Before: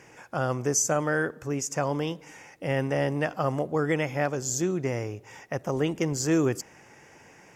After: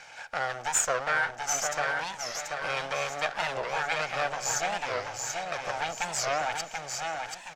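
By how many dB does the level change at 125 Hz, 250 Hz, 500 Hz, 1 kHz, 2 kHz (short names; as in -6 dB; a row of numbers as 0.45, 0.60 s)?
-16.5, -20.5, -6.0, +4.0, +4.0 dB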